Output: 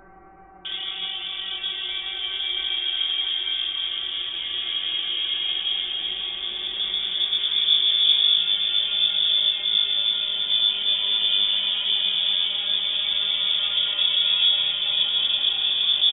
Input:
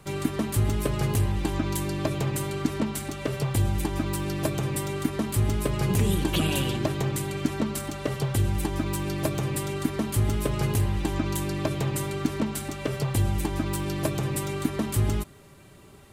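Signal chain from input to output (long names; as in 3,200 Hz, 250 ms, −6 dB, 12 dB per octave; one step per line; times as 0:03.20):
double-tracking delay 22 ms −5 dB
extreme stretch with random phases 14×, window 0.25 s, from 0:09.68
multiband delay without the direct sound highs, lows 650 ms, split 2,600 Hz
voice inversion scrambler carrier 3,500 Hz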